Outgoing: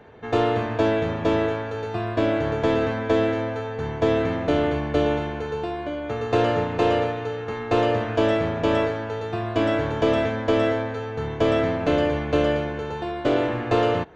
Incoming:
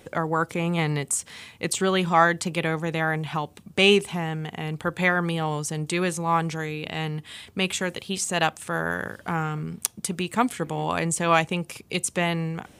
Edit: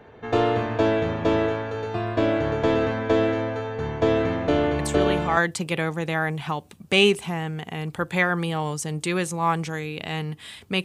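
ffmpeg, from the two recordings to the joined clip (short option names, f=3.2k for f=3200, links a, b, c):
-filter_complex "[1:a]asplit=2[a][b];[0:a]apad=whole_dur=10.84,atrim=end=10.84,atrim=end=5.372[c];[b]atrim=start=2.228:end=7.7[d];[a]atrim=start=1.65:end=2.23,asetpts=PTS-STARTPTS,volume=-6dB,afade=t=in:d=0.004:c=hsin,afade=t=out:st=0.576:d=0.004:c=hsin,adelay=4790[e];[c][d]acrossfade=d=0.004:c1=hsin:c2=hsin[f];[f][e]amix=inputs=2:normalize=0"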